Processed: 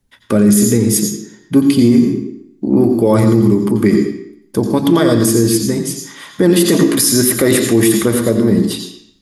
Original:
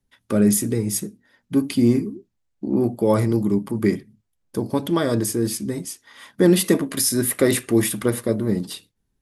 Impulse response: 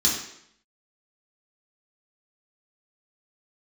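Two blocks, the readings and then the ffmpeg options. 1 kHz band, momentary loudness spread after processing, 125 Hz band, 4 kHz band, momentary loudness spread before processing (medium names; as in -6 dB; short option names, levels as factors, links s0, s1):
+7.5 dB, 12 LU, +8.0 dB, +9.0 dB, 13 LU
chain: -filter_complex "[0:a]asplit=2[s0][s1];[1:a]atrim=start_sample=2205,adelay=86[s2];[s1][s2]afir=irnorm=-1:irlink=0,volume=0.112[s3];[s0][s3]amix=inputs=2:normalize=0,alimiter=level_in=3.16:limit=0.891:release=50:level=0:latency=1,volume=0.891"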